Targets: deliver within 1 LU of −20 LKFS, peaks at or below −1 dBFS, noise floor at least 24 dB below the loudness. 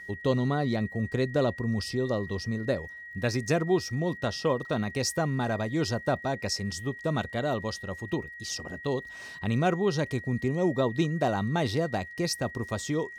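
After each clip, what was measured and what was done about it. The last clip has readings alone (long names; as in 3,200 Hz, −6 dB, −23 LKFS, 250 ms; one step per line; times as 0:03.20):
crackle rate 36 per second; interfering tone 1,900 Hz; level of the tone −41 dBFS; integrated loudness −29.5 LKFS; sample peak −14.0 dBFS; target loudness −20.0 LKFS
→ click removal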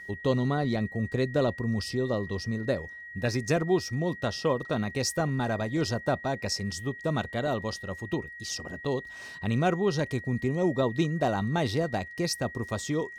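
crackle rate 0.38 per second; interfering tone 1,900 Hz; level of the tone −41 dBFS
→ notch filter 1,900 Hz, Q 30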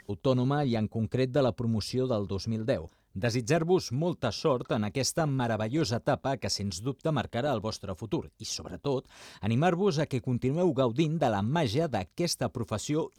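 interfering tone none found; integrated loudness −29.5 LKFS; sample peak −14.5 dBFS; target loudness −20.0 LKFS
→ level +9.5 dB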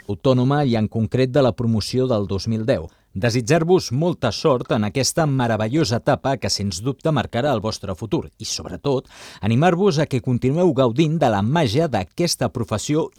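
integrated loudness −20.0 LKFS; sample peak −5.0 dBFS; background noise floor −56 dBFS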